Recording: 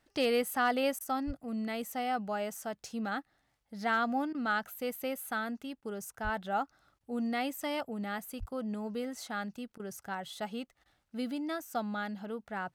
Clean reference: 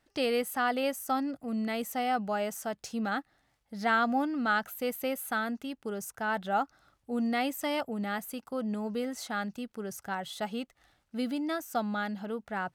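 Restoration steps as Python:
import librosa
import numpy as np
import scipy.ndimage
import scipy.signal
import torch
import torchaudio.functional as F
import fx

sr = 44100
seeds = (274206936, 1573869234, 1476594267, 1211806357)

y = fx.fix_declip(x, sr, threshold_db=-21.0)
y = fx.fix_deplosive(y, sr, at_s=(1.26, 6.23, 8.39))
y = fx.fix_interpolate(y, sr, at_s=(0.99, 4.33, 5.81, 6.99, 9.78, 10.84), length_ms=15.0)
y = fx.gain(y, sr, db=fx.steps((0.0, 0.0), (1.04, 3.5)))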